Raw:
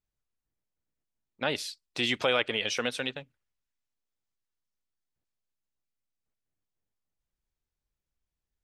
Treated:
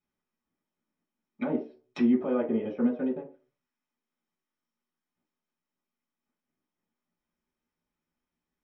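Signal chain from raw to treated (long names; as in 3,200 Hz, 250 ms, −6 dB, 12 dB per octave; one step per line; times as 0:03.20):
treble cut that deepens with the level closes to 520 Hz, closed at −31 dBFS
brickwall limiter −26.5 dBFS, peak gain reduction 9 dB
convolution reverb RT60 0.40 s, pre-delay 3 ms, DRR −5.5 dB
level −7 dB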